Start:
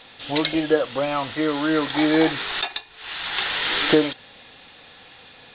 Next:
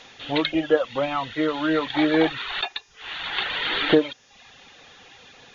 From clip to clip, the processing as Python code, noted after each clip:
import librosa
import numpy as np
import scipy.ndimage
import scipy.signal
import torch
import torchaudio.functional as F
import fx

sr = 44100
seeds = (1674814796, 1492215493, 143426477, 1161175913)

y = fx.dmg_buzz(x, sr, base_hz=400.0, harmonics=17, level_db=-55.0, tilt_db=0, odd_only=False)
y = fx.dereverb_blind(y, sr, rt60_s=0.73)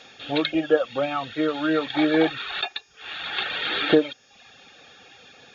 y = fx.notch_comb(x, sr, f0_hz=1000.0)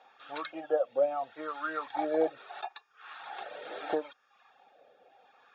y = fx.wah_lfo(x, sr, hz=0.76, low_hz=570.0, high_hz=1200.0, q=3.6)